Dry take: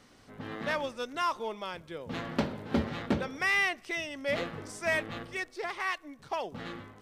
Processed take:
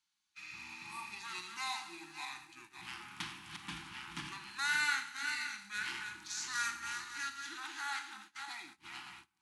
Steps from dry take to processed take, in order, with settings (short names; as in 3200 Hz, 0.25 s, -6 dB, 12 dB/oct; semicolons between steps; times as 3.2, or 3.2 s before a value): regenerating reverse delay 0.21 s, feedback 51%, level -6 dB; elliptic band-stop 460–1100 Hz, stop band 40 dB; pre-emphasis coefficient 0.97; wide varispeed 0.745×; spectral repair 0.38–1.06, 1200–7600 Hz after; Schroeder reverb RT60 0.7 s, combs from 26 ms, DRR 7 dB; gate -58 dBFS, range -21 dB; gain +4.5 dB